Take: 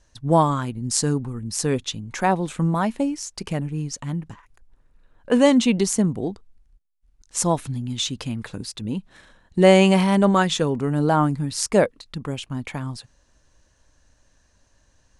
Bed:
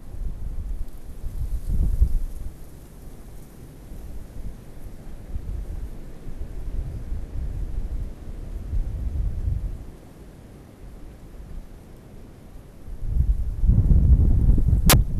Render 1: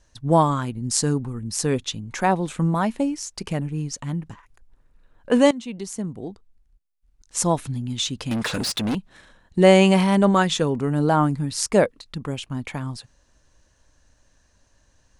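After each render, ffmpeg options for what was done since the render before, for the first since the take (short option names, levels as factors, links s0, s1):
-filter_complex "[0:a]asettb=1/sr,asplit=3[s0][s1][s2];[s0]atrim=end=8.314[s3];[s1]atrim=start=8.31:end=8.95,asetpts=PTS-STARTPTS,afade=t=in:d=0.004:c=qsin,afade=t=out:st=0.636:d=0.004:c=qsin,asplit=2[s4][s5];[s5]highpass=f=720:p=1,volume=28.2,asoftclip=type=tanh:threshold=0.15[s6];[s4][s6]amix=inputs=2:normalize=0,lowpass=f=6100:p=1,volume=0.501[s7];[s2]atrim=start=8.946[s8];[s3][s7]acrossfade=d=0.004:c1=hsin:c2=qsin[s9];[s9][s8]acrossfade=d=0.004:c1=qsin:c2=hsin,asplit=2[s10][s11];[s10]atrim=end=5.51,asetpts=PTS-STARTPTS,afade=t=out:st=5.506:d=0.004:c=hsin:silence=0.11885[s12];[s11]atrim=start=5.51,asetpts=PTS-STARTPTS,afade=t=in:d=1.94:silence=0.11885[s13];[s12][s13]concat=n=2:v=0:a=1"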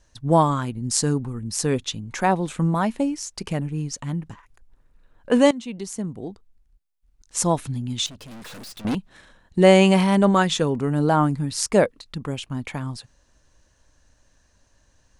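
-filter_complex "[0:a]asettb=1/sr,asplit=3[s0][s1][s2];[s0]atrim=end=8.064[s3];[s1]atrim=start=8.06:end=8.85,asetpts=PTS-STARTPTS,afade=t=in:d=0.004:c=qsin,afade=t=out:st=0.786:d=0.004:c=qsin,aeval=exprs='(tanh(89.1*val(0)+0.45)-tanh(0.45))/89.1':c=same[s4];[s2]atrim=start=8.846[s5];[s3][s4]acrossfade=d=0.004:c1=hsin:c2=qsin[s6];[s6][s5]acrossfade=d=0.004:c1=qsin:c2=hsin"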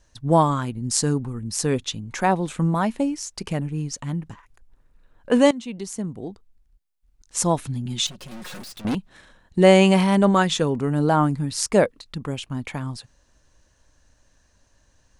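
-filter_complex "[0:a]asettb=1/sr,asplit=3[s0][s1][s2];[s0]atrim=end=7.854[s3];[s1]atrim=start=7.85:end=8.62,asetpts=PTS-STARTPTS,afade=t=in:d=0.004:c=qsin,afade=t=out:st=0.766:d=0.004:c=qsin,aecho=1:1:5.5:0.82,atrim=end_sample=33957[s4];[s2]atrim=start=8.616[s5];[s3][s4]acrossfade=d=0.004:c1=hsin:c2=qsin[s6];[s6][s5]acrossfade=d=0.004:c1=qsin:c2=hsin"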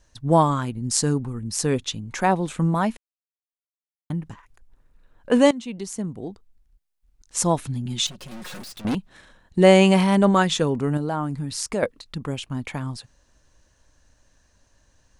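-filter_complex "[0:a]asettb=1/sr,asplit=3[s0][s1][s2];[s0]atrim=end=10.974[s3];[s1]atrim=start=10.97:end=11.83,asetpts=PTS-STARTPTS,afade=t=in:d=0.004:c=qsin,afade=t=out:st=0.856:d=0.004:c=qsin,acompressor=threshold=0.0447:ratio=2:attack=3.2:release=140:knee=1:detection=peak[s4];[s2]atrim=start=11.826[s5];[s3][s4]acrossfade=d=0.004:c1=hsin:c2=qsin[s6];[s6][s5]acrossfade=d=0.004:c1=qsin:c2=hsin,asplit=3[s7][s8][s9];[s7]atrim=end=2.97,asetpts=PTS-STARTPTS,afade=t=out:st=2.966:d=0.004:c=hsin[s10];[s8]atrim=start=2.97:end=4.1,asetpts=PTS-STARTPTS,volume=0[s11];[s9]atrim=start=4.1,asetpts=PTS-STARTPTS,afade=t=in:d=0.004:c=hsin[s12];[s10][s11][s12]concat=n=3:v=0:a=1"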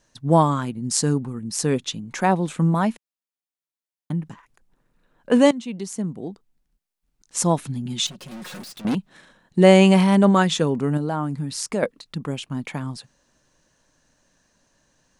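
-af "lowshelf=f=110:t=q:w=1.5:g=-11"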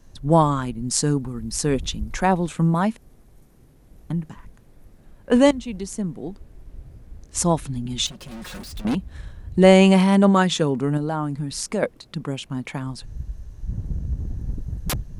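-filter_complex "[1:a]volume=0.282[s0];[0:a][s0]amix=inputs=2:normalize=0"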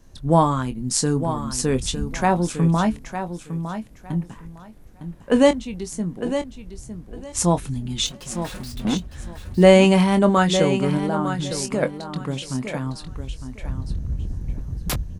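-filter_complex "[0:a]asplit=2[s0][s1];[s1]adelay=23,volume=0.316[s2];[s0][s2]amix=inputs=2:normalize=0,asplit=2[s3][s4];[s4]aecho=0:1:907|1814|2721:0.335|0.067|0.0134[s5];[s3][s5]amix=inputs=2:normalize=0"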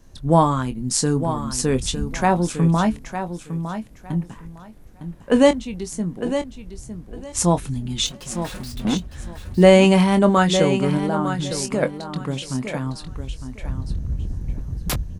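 -af "volume=1.12,alimiter=limit=0.794:level=0:latency=1"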